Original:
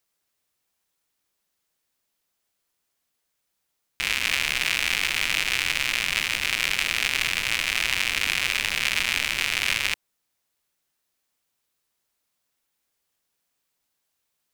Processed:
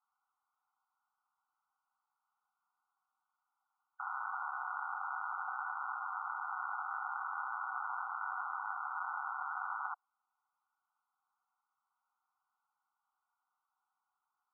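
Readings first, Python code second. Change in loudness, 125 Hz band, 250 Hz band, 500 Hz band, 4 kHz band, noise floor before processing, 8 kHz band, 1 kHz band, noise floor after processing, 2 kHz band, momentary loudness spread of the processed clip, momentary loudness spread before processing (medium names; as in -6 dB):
-17.0 dB, under -40 dB, under -40 dB, under -20 dB, under -40 dB, -78 dBFS, under -40 dB, +0.5 dB, under -85 dBFS, -19.0 dB, 1 LU, 1 LU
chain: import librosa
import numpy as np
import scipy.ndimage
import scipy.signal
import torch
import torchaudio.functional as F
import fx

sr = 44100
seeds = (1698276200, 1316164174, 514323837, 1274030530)

p1 = 10.0 ** (-18.0 / 20.0) * (np.abs((x / 10.0 ** (-18.0 / 20.0) + 3.0) % 4.0 - 2.0) - 1.0)
p2 = x + (p1 * librosa.db_to_amplitude(-5.0))
p3 = fx.brickwall_bandpass(p2, sr, low_hz=730.0, high_hz=1500.0)
y = p3 * librosa.db_to_amplitude(1.0)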